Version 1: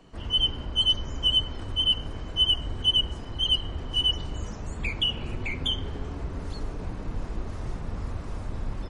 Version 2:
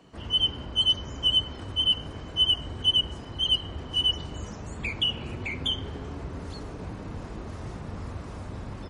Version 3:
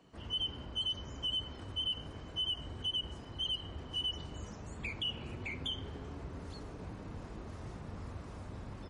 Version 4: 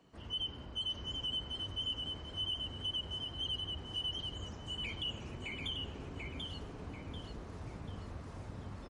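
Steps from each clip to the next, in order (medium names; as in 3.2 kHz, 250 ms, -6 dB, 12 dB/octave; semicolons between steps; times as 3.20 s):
high-pass 70 Hz 12 dB/octave
peak limiter -20.5 dBFS, peak gain reduction 7.5 dB; trim -8 dB
feedback delay 739 ms, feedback 35%, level -4 dB; trim -2.5 dB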